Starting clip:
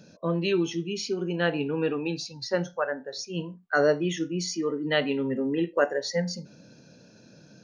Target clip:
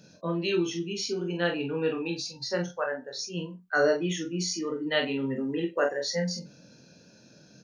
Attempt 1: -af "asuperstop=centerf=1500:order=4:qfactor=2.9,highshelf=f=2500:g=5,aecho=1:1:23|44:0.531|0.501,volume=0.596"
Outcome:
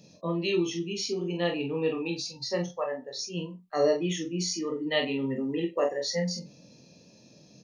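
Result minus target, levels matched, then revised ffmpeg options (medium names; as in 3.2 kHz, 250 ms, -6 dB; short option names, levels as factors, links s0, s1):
2 kHz band -5.0 dB
-af "highshelf=f=2500:g=5,aecho=1:1:23|44:0.531|0.501,volume=0.596"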